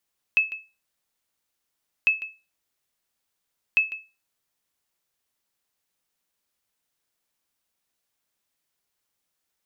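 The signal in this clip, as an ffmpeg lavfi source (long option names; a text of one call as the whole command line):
ffmpeg -f lavfi -i "aevalsrc='0.266*(sin(2*PI*2600*mod(t,1.7))*exp(-6.91*mod(t,1.7)/0.28)+0.168*sin(2*PI*2600*max(mod(t,1.7)-0.15,0))*exp(-6.91*max(mod(t,1.7)-0.15,0)/0.28))':duration=5.1:sample_rate=44100" out.wav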